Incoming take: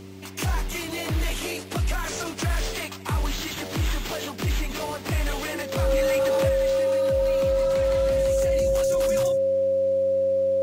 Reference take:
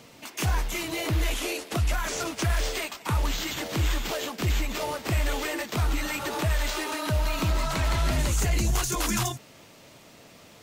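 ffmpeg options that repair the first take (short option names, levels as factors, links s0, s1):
-af "bandreject=f=95.8:t=h:w=4,bandreject=f=191.6:t=h:w=4,bandreject=f=287.4:t=h:w=4,bandreject=f=383.2:t=h:w=4,bandreject=f=540:w=30,asetnsamples=n=441:p=0,asendcmd='6.49 volume volume 6.5dB',volume=1"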